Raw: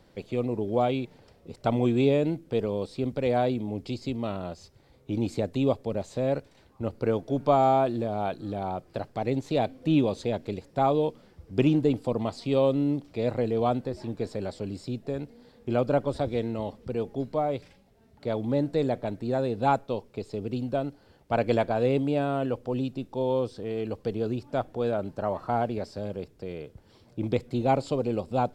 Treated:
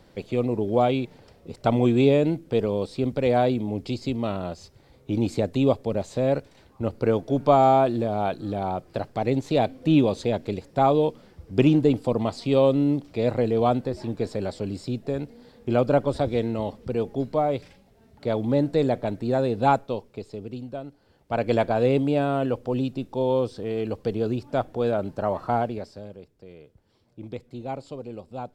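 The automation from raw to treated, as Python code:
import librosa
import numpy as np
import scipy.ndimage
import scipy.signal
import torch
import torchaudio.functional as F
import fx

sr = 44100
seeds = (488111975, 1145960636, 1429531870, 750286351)

y = fx.gain(x, sr, db=fx.line((19.67, 4.0), (20.83, -7.0), (21.65, 3.5), (25.53, 3.5), (26.21, -9.0)))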